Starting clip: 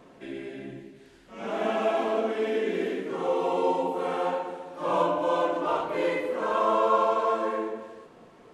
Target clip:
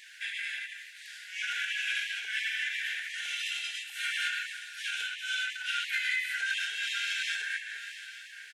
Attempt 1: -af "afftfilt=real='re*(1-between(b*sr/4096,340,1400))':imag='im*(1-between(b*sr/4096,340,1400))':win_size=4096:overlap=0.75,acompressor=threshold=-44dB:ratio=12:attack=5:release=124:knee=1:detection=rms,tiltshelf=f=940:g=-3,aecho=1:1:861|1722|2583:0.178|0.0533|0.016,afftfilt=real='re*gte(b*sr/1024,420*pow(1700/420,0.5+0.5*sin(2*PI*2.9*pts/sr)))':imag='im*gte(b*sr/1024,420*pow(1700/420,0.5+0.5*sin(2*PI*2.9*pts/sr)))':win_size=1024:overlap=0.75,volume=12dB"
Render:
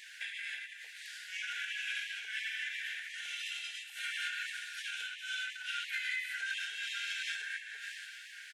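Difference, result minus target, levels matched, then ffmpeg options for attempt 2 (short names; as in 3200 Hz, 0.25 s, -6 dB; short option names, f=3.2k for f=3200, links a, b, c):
compressor: peak gain reduction +6 dB
-af "afftfilt=real='re*(1-between(b*sr/4096,340,1400))':imag='im*(1-between(b*sr/4096,340,1400))':win_size=4096:overlap=0.75,acompressor=threshold=-37.5dB:ratio=12:attack=5:release=124:knee=1:detection=rms,tiltshelf=f=940:g=-3,aecho=1:1:861|1722|2583:0.178|0.0533|0.016,afftfilt=real='re*gte(b*sr/1024,420*pow(1700/420,0.5+0.5*sin(2*PI*2.9*pts/sr)))':imag='im*gte(b*sr/1024,420*pow(1700/420,0.5+0.5*sin(2*PI*2.9*pts/sr)))':win_size=1024:overlap=0.75,volume=12dB"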